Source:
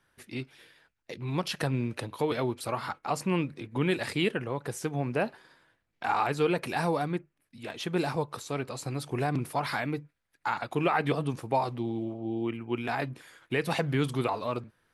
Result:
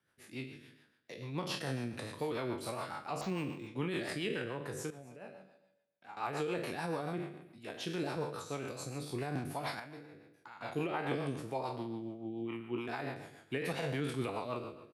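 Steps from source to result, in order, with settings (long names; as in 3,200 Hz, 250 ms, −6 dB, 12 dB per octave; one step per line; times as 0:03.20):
peak hold with a decay on every bin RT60 0.83 s
high-pass filter 92 Hz
brickwall limiter −17 dBFS, peak gain reduction 6.5 dB
0:04.90–0:06.17: tuned comb filter 190 Hz, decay 0.76 s, harmonics odd, mix 80%
0:09.79–0:10.61: downward compressor 12 to 1, threshold −37 dBFS, peak gain reduction 13 dB
rotating-speaker cabinet horn 7 Hz
single-tap delay 263 ms −21.5 dB
0:03.21–0:03.67: linearly interpolated sample-rate reduction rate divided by 4×
level −7 dB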